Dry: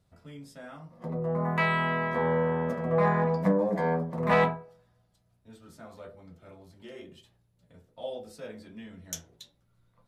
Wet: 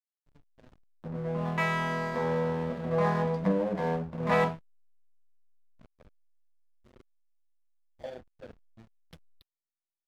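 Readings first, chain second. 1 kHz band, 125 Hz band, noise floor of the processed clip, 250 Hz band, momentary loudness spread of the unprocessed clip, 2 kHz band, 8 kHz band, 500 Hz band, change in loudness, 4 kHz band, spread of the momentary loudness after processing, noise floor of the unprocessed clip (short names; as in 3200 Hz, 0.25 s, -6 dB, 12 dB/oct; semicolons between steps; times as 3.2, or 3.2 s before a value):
-3.0 dB, -2.0 dB, under -85 dBFS, -2.0 dB, 22 LU, -3.5 dB, n/a, -2.5 dB, -2.0 dB, -2.0 dB, 17 LU, -70 dBFS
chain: downsampling 11025 Hz; backlash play -32.5 dBFS; gain -2 dB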